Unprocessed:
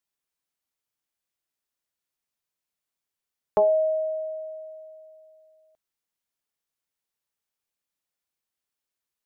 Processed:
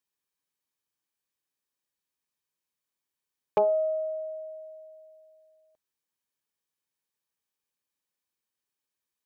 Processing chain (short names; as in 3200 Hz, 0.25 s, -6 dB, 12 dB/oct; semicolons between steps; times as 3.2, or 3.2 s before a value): rattling part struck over -35 dBFS, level -26 dBFS; notch comb 690 Hz; Doppler distortion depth 0.1 ms